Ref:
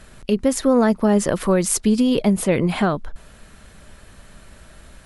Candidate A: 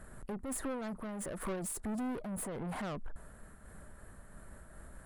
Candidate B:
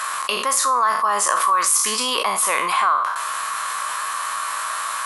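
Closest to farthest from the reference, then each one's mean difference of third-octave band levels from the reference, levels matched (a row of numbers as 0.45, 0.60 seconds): A, B; 8.0, 14.5 decibels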